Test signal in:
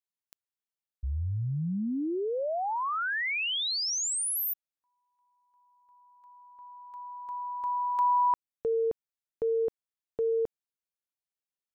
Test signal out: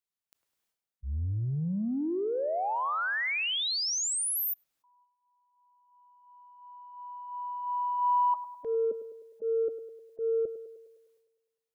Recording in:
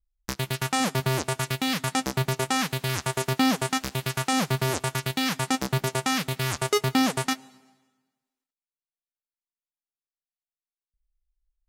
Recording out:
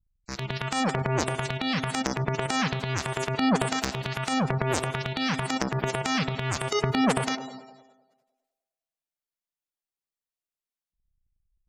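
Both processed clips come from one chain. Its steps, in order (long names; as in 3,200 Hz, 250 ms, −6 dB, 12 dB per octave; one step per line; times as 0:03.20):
gate on every frequency bin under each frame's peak −20 dB strong
transient designer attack −8 dB, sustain +12 dB
feedback echo with a band-pass in the loop 102 ms, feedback 62%, band-pass 600 Hz, level −11 dB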